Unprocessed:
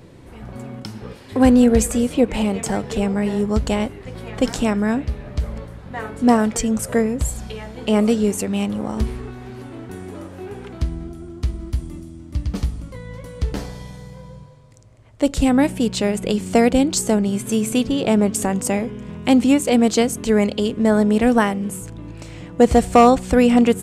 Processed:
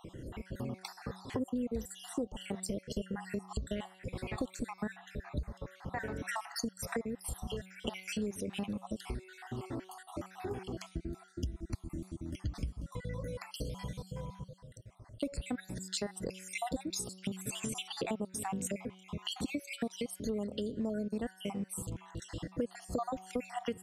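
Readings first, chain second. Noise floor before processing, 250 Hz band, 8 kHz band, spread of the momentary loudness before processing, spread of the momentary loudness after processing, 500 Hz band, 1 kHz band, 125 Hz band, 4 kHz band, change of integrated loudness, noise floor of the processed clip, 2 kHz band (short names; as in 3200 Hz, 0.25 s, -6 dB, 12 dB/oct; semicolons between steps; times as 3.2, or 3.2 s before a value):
-41 dBFS, -21.5 dB, -15.5 dB, 20 LU, 8 LU, -20.5 dB, -20.5 dB, -15.5 dB, -13.0 dB, -21.0 dB, -60 dBFS, -16.0 dB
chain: random spectral dropouts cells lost 57%; de-hum 187.4 Hz, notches 30; compressor 6:1, threshold -33 dBFS, peak gain reduction 23 dB; gain -1.5 dB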